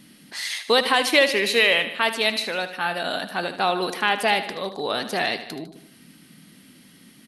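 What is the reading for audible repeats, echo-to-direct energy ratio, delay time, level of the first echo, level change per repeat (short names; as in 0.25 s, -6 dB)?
4, -10.5 dB, 76 ms, -12.0 dB, -4.5 dB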